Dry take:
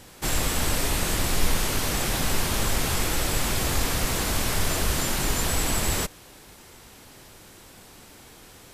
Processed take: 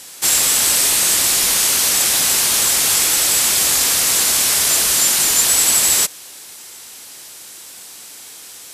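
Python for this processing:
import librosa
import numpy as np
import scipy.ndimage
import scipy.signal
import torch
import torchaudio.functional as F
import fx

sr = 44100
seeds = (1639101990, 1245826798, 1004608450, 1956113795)

y = fx.highpass(x, sr, hz=400.0, slope=6)
y = fx.peak_eq(y, sr, hz=8900.0, db=15.0, octaves=2.9)
y = y * 10.0 ** (2.0 / 20.0)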